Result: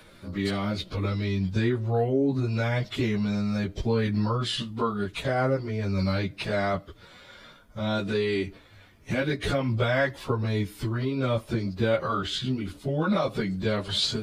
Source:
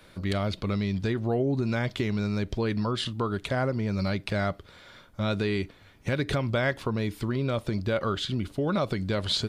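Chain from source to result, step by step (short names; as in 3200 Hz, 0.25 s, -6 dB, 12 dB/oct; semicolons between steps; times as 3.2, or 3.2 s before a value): plain phase-vocoder stretch 1.5×; gain +4 dB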